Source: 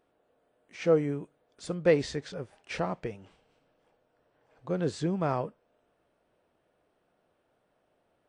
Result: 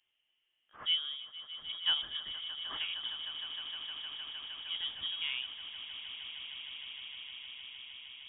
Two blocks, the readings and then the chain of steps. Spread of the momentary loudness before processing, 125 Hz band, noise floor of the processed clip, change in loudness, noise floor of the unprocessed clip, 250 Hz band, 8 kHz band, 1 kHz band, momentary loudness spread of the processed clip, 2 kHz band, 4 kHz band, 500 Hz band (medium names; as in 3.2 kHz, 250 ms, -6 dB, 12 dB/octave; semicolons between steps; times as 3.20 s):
16 LU, under -30 dB, -80 dBFS, -6.5 dB, -74 dBFS, under -30 dB, under -30 dB, -13.0 dB, 12 LU, -1.0 dB, +16.5 dB, -35.5 dB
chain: bass shelf 350 Hz -4.5 dB; echo with a slow build-up 154 ms, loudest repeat 8, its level -13.5 dB; frequency inversion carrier 3.5 kHz; trim -7 dB